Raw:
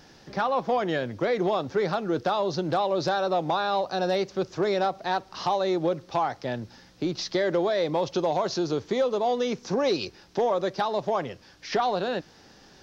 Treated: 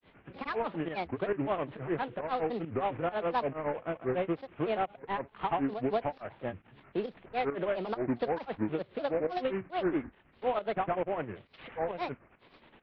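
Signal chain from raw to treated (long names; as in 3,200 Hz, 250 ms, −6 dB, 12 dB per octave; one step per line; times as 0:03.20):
variable-slope delta modulation 16 kbit/s
granular cloud 155 ms, grains 9.7 per second, pitch spread up and down by 7 semitones
fake sidechain pumping 136 BPM, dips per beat 1, −12 dB, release 168 ms
level −3 dB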